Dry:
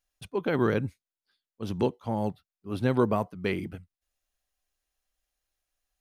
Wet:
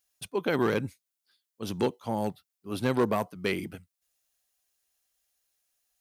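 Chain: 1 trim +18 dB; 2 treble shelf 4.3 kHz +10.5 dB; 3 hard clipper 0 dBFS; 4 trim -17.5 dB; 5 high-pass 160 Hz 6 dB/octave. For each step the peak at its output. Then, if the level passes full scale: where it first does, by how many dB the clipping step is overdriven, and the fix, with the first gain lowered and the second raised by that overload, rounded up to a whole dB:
+5.5 dBFS, +6.0 dBFS, 0.0 dBFS, -17.5 dBFS, -13.5 dBFS; step 1, 6.0 dB; step 1 +12 dB, step 4 -11.5 dB

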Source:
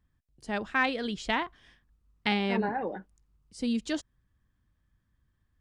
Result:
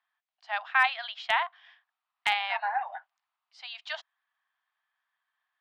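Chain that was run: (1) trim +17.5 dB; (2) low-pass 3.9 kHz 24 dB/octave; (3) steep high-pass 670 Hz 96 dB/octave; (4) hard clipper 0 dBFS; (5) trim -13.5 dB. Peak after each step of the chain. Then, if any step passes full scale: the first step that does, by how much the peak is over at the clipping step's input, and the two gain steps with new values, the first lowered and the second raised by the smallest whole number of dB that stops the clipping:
+6.0 dBFS, +5.5 dBFS, +4.5 dBFS, 0.0 dBFS, -13.5 dBFS; step 1, 4.5 dB; step 1 +12.5 dB, step 5 -8.5 dB

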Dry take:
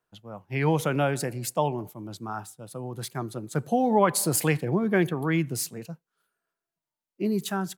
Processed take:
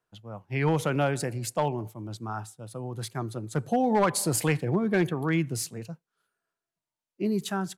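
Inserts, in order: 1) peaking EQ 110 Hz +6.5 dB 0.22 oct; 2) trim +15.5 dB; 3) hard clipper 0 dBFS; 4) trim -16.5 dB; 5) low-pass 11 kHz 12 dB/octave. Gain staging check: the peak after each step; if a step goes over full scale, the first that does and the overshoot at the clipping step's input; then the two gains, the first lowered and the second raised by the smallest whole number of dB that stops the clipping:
-8.0 dBFS, +7.5 dBFS, 0.0 dBFS, -16.5 dBFS, -16.0 dBFS; step 2, 7.5 dB; step 2 +7.5 dB, step 4 -8.5 dB

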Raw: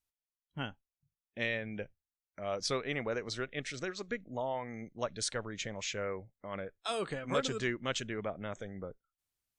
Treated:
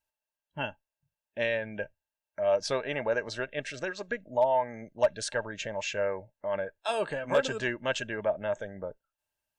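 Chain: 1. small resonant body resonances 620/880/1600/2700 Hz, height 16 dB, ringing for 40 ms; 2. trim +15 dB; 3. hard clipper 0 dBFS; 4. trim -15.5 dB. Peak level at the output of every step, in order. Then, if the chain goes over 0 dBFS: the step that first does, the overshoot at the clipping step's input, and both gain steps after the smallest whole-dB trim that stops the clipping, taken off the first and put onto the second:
-11.0 dBFS, +4.0 dBFS, 0.0 dBFS, -15.5 dBFS; step 2, 4.0 dB; step 2 +11 dB, step 4 -11.5 dB

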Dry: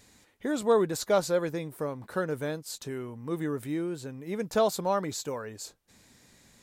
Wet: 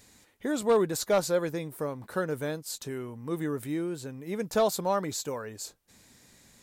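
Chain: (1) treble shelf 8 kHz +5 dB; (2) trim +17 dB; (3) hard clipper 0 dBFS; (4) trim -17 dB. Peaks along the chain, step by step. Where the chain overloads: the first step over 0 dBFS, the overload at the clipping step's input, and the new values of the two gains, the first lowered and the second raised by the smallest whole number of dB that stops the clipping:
-13.5 dBFS, +3.5 dBFS, 0.0 dBFS, -17.0 dBFS; step 2, 3.5 dB; step 2 +13 dB, step 4 -13 dB

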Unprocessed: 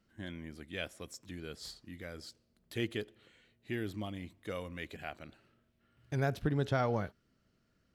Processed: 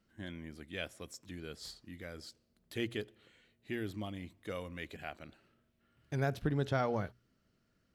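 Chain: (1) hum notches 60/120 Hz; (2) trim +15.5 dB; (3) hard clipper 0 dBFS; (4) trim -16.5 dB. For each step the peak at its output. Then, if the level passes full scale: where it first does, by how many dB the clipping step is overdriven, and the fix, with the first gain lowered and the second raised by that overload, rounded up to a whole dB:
-20.0 dBFS, -4.5 dBFS, -4.5 dBFS, -21.0 dBFS; nothing clips

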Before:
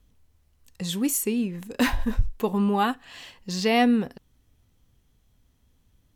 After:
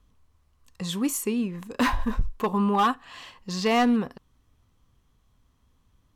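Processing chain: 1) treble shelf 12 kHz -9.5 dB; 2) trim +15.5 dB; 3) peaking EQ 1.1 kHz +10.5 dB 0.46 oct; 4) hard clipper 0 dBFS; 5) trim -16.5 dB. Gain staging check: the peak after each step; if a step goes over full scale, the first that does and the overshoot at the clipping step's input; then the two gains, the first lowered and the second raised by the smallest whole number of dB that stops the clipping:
-10.0 dBFS, +5.5 dBFS, +7.0 dBFS, 0.0 dBFS, -16.5 dBFS; step 2, 7.0 dB; step 2 +8.5 dB, step 5 -9.5 dB

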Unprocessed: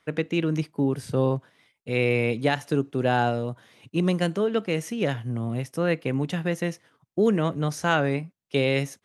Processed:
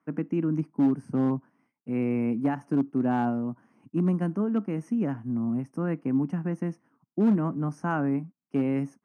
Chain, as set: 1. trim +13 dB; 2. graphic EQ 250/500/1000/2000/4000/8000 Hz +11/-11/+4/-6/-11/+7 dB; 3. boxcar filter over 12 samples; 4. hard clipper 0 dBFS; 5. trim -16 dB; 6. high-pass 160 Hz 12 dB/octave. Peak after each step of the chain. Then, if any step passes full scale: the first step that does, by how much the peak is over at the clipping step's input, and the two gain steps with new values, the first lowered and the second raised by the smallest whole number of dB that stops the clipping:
+5.5 dBFS, +4.5 dBFS, +4.0 dBFS, 0.0 dBFS, -16.0 dBFS, -13.0 dBFS; step 1, 4.0 dB; step 1 +9 dB, step 5 -12 dB

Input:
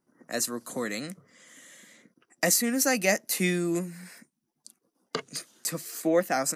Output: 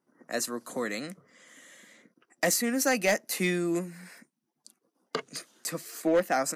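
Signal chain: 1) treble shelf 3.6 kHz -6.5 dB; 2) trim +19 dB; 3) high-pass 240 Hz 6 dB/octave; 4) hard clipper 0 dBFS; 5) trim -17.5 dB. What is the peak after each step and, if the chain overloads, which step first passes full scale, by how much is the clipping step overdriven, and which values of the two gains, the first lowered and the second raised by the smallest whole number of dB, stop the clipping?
-11.5 dBFS, +7.5 dBFS, +7.0 dBFS, 0.0 dBFS, -17.5 dBFS; step 2, 7.0 dB; step 2 +12 dB, step 5 -10.5 dB

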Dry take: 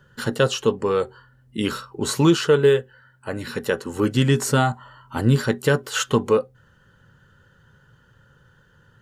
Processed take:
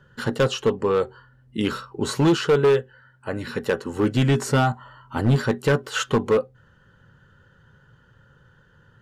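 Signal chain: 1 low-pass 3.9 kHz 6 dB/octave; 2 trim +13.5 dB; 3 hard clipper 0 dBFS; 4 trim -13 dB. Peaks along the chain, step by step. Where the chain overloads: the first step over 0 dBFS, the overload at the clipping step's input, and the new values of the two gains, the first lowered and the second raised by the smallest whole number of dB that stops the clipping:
-5.5 dBFS, +8.0 dBFS, 0.0 dBFS, -13.0 dBFS; step 2, 8.0 dB; step 2 +5.5 dB, step 4 -5 dB

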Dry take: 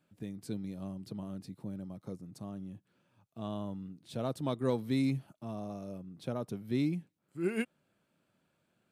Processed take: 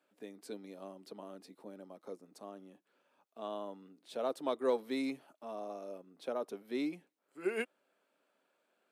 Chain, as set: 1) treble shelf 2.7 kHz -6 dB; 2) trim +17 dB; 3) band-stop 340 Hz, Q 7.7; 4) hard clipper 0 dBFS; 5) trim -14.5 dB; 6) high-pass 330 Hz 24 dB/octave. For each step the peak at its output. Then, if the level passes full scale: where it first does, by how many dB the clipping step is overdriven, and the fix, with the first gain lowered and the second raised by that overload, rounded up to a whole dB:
-17.5 dBFS, -0.5 dBFS, -1.5 dBFS, -1.5 dBFS, -16.0 dBFS, -20.0 dBFS; nothing clips

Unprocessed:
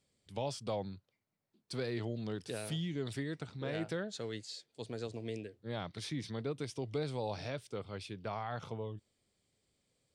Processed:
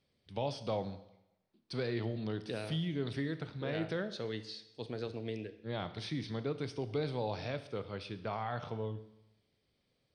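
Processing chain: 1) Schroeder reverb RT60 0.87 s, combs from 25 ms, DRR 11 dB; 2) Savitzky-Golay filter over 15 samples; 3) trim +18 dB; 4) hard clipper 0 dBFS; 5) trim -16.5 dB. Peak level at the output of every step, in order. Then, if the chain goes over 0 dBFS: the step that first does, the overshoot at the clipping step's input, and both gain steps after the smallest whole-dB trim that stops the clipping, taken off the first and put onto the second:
-23.5 dBFS, -23.5 dBFS, -5.5 dBFS, -5.5 dBFS, -22.0 dBFS; nothing clips

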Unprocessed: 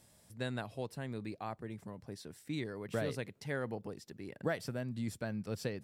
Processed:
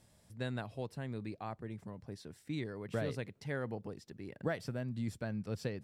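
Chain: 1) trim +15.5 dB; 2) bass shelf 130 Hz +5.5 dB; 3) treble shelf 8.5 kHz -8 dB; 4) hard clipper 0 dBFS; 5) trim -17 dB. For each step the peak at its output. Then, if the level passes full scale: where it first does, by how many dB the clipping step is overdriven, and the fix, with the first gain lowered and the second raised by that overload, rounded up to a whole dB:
-7.0 dBFS, -5.5 dBFS, -5.5 dBFS, -5.5 dBFS, -22.5 dBFS; nothing clips

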